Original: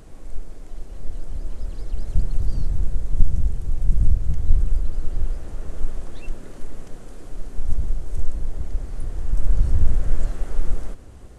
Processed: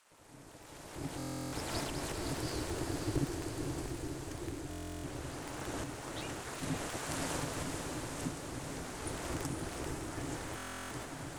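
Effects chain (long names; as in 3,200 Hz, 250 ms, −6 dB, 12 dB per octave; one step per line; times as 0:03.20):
gap after every zero crossing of 0.26 ms
source passing by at 0:02.74, 7 m/s, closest 3.6 metres
camcorder AGC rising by 11 dB per second
gate on every frequency bin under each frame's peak −25 dB weak
parametric band 250 Hz −9 dB 2.4 octaves
notch filter 560 Hz, Q 17
ring modulation 210 Hz
on a send: feedback delay with all-pass diffusion 513 ms, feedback 63%, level −5 dB
on the sum: buffer that repeats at 0:01.18/0:04.69/0:10.56, samples 1,024, times 14
level +10.5 dB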